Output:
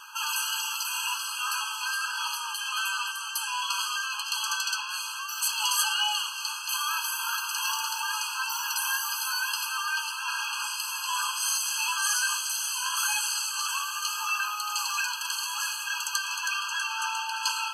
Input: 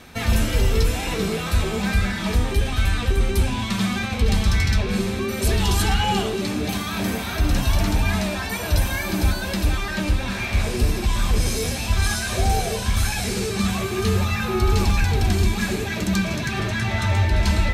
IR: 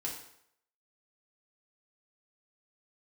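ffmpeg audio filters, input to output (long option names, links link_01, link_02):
-filter_complex "[0:a]acrossover=split=220|3000[link_01][link_02][link_03];[link_02]acompressor=threshold=-31dB:ratio=6[link_04];[link_01][link_04][link_03]amix=inputs=3:normalize=0,afftfilt=real='re*eq(mod(floor(b*sr/1024/830),2),1)':imag='im*eq(mod(floor(b*sr/1024/830),2),1)':win_size=1024:overlap=0.75,volume=5.5dB"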